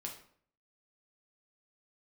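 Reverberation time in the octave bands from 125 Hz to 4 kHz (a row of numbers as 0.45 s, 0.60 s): 0.65 s, 0.65 s, 0.60 s, 0.55 s, 0.50 s, 0.40 s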